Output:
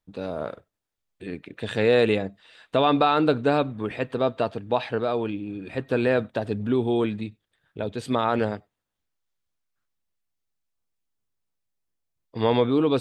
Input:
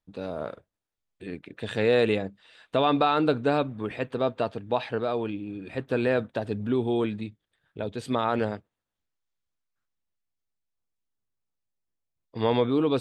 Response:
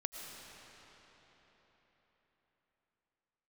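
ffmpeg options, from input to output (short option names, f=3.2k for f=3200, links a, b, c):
-filter_complex "[0:a]asplit=2[a][b];[1:a]atrim=start_sample=2205,atrim=end_sample=4410[c];[b][c]afir=irnorm=-1:irlink=0,volume=-7dB[d];[a][d]amix=inputs=2:normalize=0"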